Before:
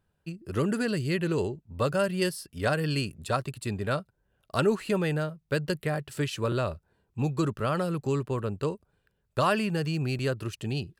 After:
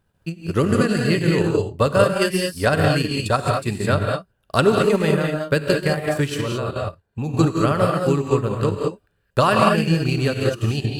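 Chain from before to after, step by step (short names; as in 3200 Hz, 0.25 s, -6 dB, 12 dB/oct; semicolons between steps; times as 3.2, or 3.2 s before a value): non-linear reverb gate 0.24 s rising, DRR -0.5 dB; transient shaper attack +4 dB, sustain -6 dB; 6.41–7.29 level quantiser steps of 10 dB; gain +6 dB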